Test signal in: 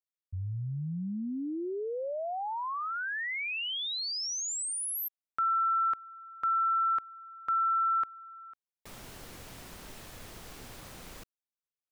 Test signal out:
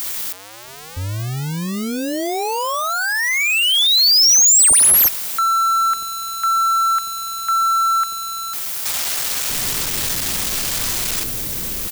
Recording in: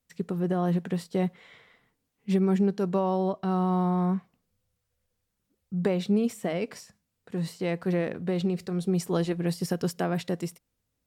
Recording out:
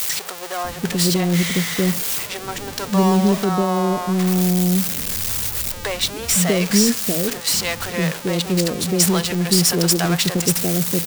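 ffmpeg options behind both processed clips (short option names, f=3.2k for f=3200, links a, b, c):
-filter_complex "[0:a]aeval=exprs='val(0)+0.5*0.0266*sgn(val(0))':c=same,acrossover=split=570[a][b];[a]adelay=640[c];[c][b]amix=inputs=2:normalize=0,crystalizer=i=5.5:c=0,asplit=2[d][e];[e]adynamicsmooth=sensitivity=6.5:basefreq=1.5k,volume=2.5dB[f];[d][f]amix=inputs=2:normalize=0,volume=-1dB"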